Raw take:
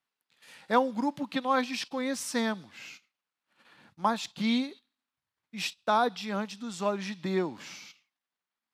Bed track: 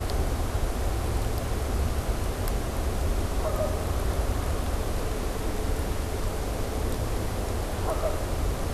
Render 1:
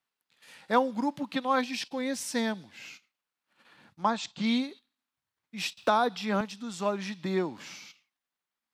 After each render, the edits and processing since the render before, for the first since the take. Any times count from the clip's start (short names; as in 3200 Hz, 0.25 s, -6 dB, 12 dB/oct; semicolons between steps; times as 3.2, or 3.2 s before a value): 1.61–2.84 bell 1200 Hz -9 dB 0.35 oct; 4.03–4.46 steep low-pass 8500 Hz 96 dB/oct; 5.77–6.41 three-band squash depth 70%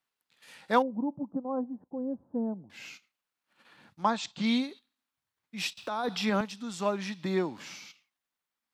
0.82–2.7 Gaussian blur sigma 12 samples; 5.75–6.3 negative-ratio compressor -30 dBFS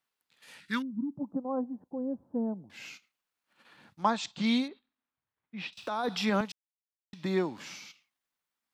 0.6–1.17 Chebyshev band-stop 250–1700 Hz; 4.68–5.73 air absorption 350 m; 6.52–7.13 mute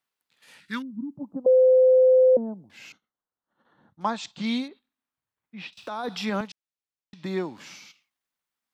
1.46–2.37 bleep 514 Hz -13 dBFS; 2.92–4.01 running mean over 18 samples; 6.47–7.24 LPF 7300 Hz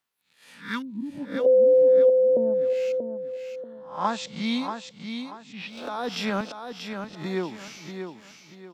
spectral swells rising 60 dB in 0.38 s; on a send: feedback echo 0.635 s, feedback 32%, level -7 dB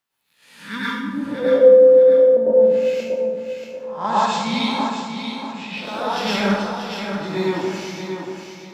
on a send: analogue delay 0.189 s, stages 2048, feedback 66%, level -12 dB; on the sum: plate-style reverb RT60 0.91 s, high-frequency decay 0.9×, pre-delay 90 ms, DRR -8 dB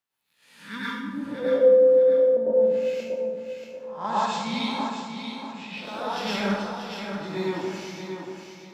gain -6.5 dB